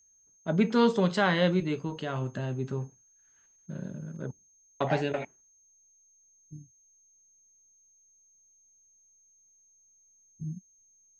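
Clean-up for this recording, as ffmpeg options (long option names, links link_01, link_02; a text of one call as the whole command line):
ffmpeg -i in.wav -af "bandreject=frequency=6400:width=30" out.wav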